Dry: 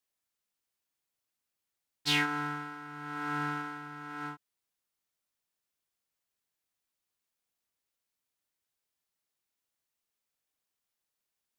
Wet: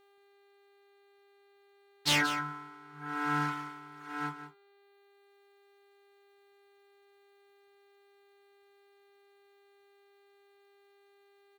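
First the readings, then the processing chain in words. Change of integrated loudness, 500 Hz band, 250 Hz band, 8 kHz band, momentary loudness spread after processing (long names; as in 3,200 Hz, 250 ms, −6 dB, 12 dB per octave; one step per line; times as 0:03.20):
+1.0 dB, +2.0 dB, 0.0 dB, +6.5 dB, 21 LU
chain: wavefolder on the positive side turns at −23 dBFS
reverb reduction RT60 1.8 s
high-pass filter 51 Hz
hum removal 199.9 Hz, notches 7
in parallel at −1.5 dB: speech leveller 0.5 s
on the sum: hum with harmonics 400 Hz, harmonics 11, −65 dBFS −6 dB per octave
on a send: single-tap delay 178 ms −11.5 dB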